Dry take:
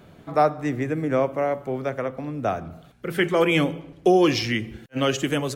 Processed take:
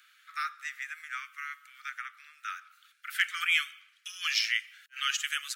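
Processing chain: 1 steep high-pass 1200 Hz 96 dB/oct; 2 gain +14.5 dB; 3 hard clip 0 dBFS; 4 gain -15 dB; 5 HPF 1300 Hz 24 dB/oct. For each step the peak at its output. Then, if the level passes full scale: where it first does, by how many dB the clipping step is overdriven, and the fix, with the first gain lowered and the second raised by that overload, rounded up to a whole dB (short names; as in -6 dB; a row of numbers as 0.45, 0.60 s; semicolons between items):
-10.5, +4.0, 0.0, -15.0, -13.0 dBFS; step 2, 4.0 dB; step 2 +10.5 dB, step 4 -11 dB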